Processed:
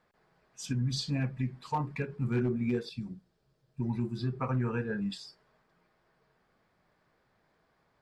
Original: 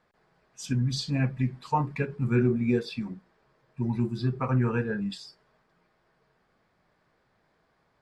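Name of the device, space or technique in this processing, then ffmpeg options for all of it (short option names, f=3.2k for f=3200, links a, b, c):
clipper into limiter: -filter_complex "[0:a]asettb=1/sr,asplit=3[a][b][c];[a]atrim=end=2.894[d];[b]atrim=start=2.89:end=3.8,asetpts=PTS-STARTPTS,afade=t=in:d=0.004:c=qsin,afade=t=out:st=0.906:d=0.004:c=qsin,equalizer=f=125:t=o:w=1:g=4,equalizer=f=250:t=o:w=1:g=-5,equalizer=f=500:t=o:w=1:g=-4,equalizer=f=1k:t=o:w=1:g=-11,equalizer=f=2k:t=o:w=1:g=-11[e];[c]atrim=start=3.796[f];[d][e]acrossfade=d=0.004:c1=hsin:c2=qsin[g];[g][f]acrossfade=d=0.004:c1=qsin:c2=hsin,asoftclip=type=hard:threshold=-16.5dB,alimiter=limit=-20.5dB:level=0:latency=1:release=267,volume=-2dB"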